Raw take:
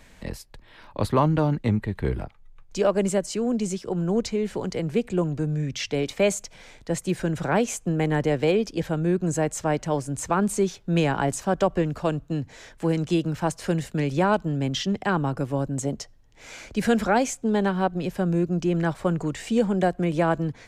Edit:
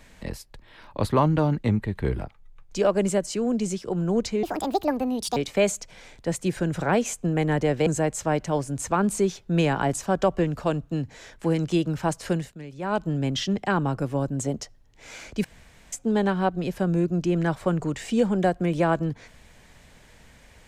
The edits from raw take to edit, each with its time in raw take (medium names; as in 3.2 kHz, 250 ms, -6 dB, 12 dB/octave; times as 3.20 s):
4.43–5.99 s: speed 167%
8.49–9.25 s: delete
13.69–14.44 s: dip -14.5 dB, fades 0.26 s
16.83–17.31 s: room tone